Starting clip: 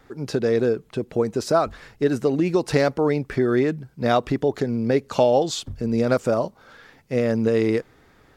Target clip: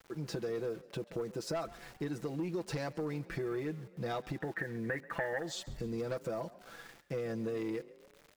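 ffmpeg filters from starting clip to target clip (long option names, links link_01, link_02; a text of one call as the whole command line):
ffmpeg -i in.wav -filter_complex "[0:a]aecho=1:1:6:0.75,asoftclip=type=tanh:threshold=-11.5dB,asettb=1/sr,asplit=3[link_01][link_02][link_03];[link_01]atrim=end=4.404[link_04];[link_02]atrim=start=4.4:end=5.47,asetpts=PTS-STARTPTS,afade=type=in:duration=0.004:curve=qsin,afade=type=out:start_time=1.066:duration=0.004:curve=qsin,lowpass=frequency=1800:width_type=q:width=15[link_05];[link_03]atrim=start=5.466[link_06];[link_04][link_05]acrossfade=duration=0.004:curve1=hsin:curve2=qsin[link_07];[link_07][link_06]acrossfade=duration=0.004:curve1=qsin:curve2=hsin,acompressor=threshold=-33dB:ratio=3,aeval=exprs='val(0)*gte(abs(val(0)),0.00447)':channel_layout=same,asplit=2[link_08][link_09];[link_09]asplit=4[link_10][link_11][link_12][link_13];[link_10]adelay=136,afreqshift=31,volume=-19.5dB[link_14];[link_11]adelay=272,afreqshift=62,volume=-25dB[link_15];[link_12]adelay=408,afreqshift=93,volume=-30.5dB[link_16];[link_13]adelay=544,afreqshift=124,volume=-36dB[link_17];[link_14][link_15][link_16][link_17]amix=inputs=4:normalize=0[link_18];[link_08][link_18]amix=inputs=2:normalize=0,volume=-5.5dB" out.wav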